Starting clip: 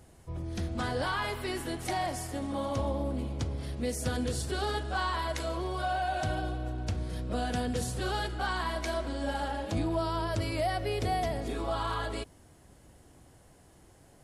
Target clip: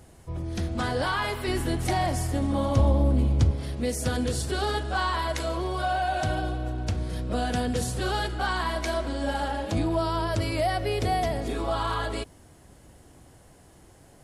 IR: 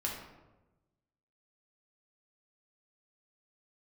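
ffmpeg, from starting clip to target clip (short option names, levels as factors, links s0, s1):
-filter_complex "[0:a]asettb=1/sr,asplit=3[s0][s1][s2];[s0]atrim=end=1.474[s3];[s1]atrim=start=1.47:end=3.51,asetpts=PTS-STARTPTS,afade=t=in:d=0.004:c=qsin,afade=t=out:st=2.036:d=0.004:c=qsin,lowshelf=f=180:g=11[s4];[s2]atrim=start=3.506[s5];[s3][s4]acrossfade=d=0.004:c1=hsin:c2=qsin[s6];[s6][s5]acrossfade=d=0.004:c1=qsin:c2=hsin,volume=1.68"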